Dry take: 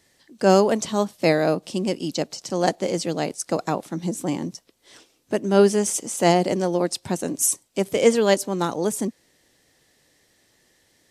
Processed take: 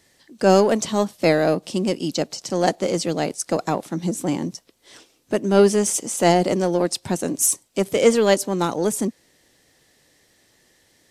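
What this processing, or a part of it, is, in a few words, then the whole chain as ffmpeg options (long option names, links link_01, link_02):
parallel distortion: -filter_complex "[0:a]asplit=2[link_01][link_02];[link_02]asoftclip=type=hard:threshold=-19.5dB,volume=-9dB[link_03];[link_01][link_03]amix=inputs=2:normalize=0"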